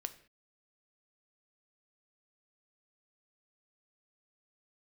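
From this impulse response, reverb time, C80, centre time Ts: no single decay rate, 18.0 dB, 6 ms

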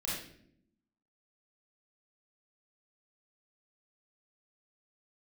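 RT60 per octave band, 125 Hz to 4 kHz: 1.1 s, 1.2 s, 0.85 s, 0.50 s, 0.60 s, 0.50 s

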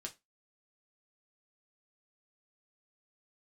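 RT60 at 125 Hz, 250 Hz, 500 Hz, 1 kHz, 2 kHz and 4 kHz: 0.20 s, 0.25 s, 0.20 s, 0.20 s, 0.20 s, 0.20 s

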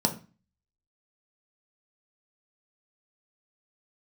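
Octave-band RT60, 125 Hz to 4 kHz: 0.50 s, 0.45 s, 0.30 s, 0.35 s, 0.35 s, 0.30 s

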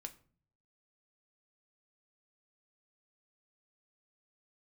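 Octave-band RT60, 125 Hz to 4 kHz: 0.90 s, 0.70 s, 0.50 s, 0.40 s, 0.35 s, 0.30 s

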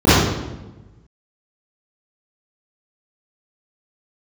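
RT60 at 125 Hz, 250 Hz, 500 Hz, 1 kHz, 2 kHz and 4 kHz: 1.6 s, 1.4 s, 1.2 s, 1.0 s, 0.85 s, 0.75 s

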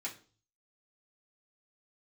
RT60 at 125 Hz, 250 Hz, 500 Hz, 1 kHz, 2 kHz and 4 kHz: 0.75 s, 0.45 s, 0.45 s, 0.35 s, 0.35 s, 0.40 s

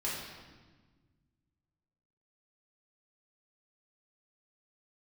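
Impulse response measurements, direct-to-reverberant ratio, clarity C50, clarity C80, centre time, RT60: -7.5 dB, 0.0 dB, 3.0 dB, 80 ms, 1.4 s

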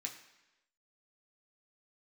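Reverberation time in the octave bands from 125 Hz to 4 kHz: 0.80 s, 0.95 s, 1.0 s, 1.0 s, 1.0 s, 1.0 s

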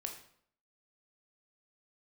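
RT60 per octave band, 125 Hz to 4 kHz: 0.65 s, 0.65 s, 0.65 s, 0.60 s, 0.55 s, 0.50 s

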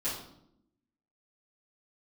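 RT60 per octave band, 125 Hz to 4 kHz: 0.95 s, 1.2 s, 0.85 s, 0.65 s, 0.55 s, 0.55 s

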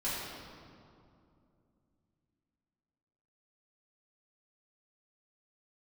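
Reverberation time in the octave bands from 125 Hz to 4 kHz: 3.6 s, 3.5 s, 2.8 s, 2.4 s, 1.7 s, 1.5 s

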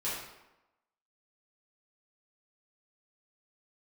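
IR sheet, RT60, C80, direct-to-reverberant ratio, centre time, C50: 0.95 s, 4.0 dB, -10.0 dB, 64 ms, 1.0 dB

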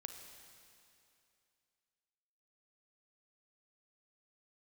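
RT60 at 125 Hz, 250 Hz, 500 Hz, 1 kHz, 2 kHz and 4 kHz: 2.6 s, 2.6 s, 2.7 s, 2.6 s, 2.6 s, 2.6 s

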